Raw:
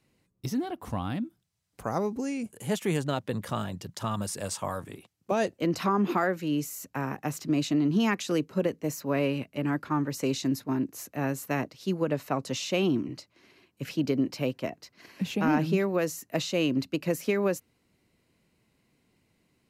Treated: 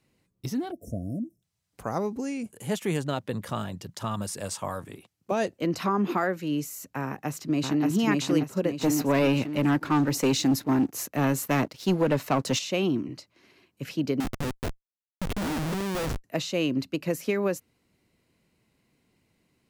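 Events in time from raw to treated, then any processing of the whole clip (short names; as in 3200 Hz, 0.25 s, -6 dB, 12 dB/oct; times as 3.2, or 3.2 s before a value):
0.71–1.42 spectral delete 690–5200 Hz
7.05–7.85 echo throw 0.58 s, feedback 40%, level -0.5 dB
8.81–12.59 sample leveller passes 2
14.2–16.24 Schmitt trigger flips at -30.5 dBFS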